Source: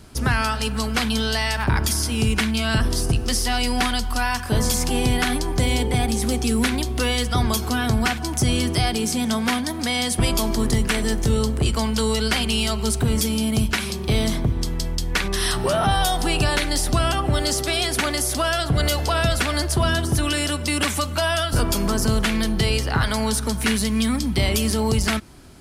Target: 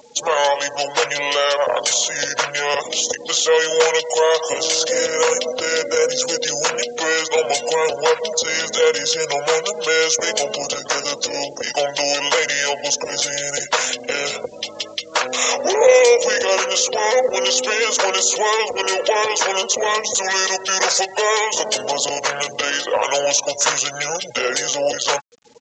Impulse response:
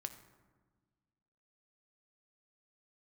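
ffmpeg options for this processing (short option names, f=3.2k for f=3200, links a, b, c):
-filter_complex "[0:a]aeval=exprs='0.376*(cos(1*acos(clip(val(0)/0.376,-1,1)))-cos(1*PI/2))+0.00299*(cos(3*acos(clip(val(0)/0.376,-1,1)))-cos(3*PI/2))+0.0531*(cos(5*acos(clip(val(0)/0.376,-1,1)))-cos(5*PI/2))':c=same,highshelf=f=2.8k:g=3.5,aecho=1:1:5.4:0.32,acrossover=split=2700[a][b];[a]acompressor=mode=upward:threshold=-28dB:ratio=2.5[c];[b]alimiter=limit=-15dB:level=0:latency=1:release=186[d];[c][d]amix=inputs=2:normalize=0,afftfilt=real='re*gte(hypot(re,im),0.0251)':imag='im*gte(hypot(re,im),0.0251)':win_size=1024:overlap=0.75,highpass=f=800:t=q:w=4.9,acrusher=bits=8:mix=0:aa=0.000001,asetrate=28595,aresample=44100,atempo=1.54221,crystalizer=i=4.5:c=0,aresample=16000,aresample=44100,volume=-3.5dB"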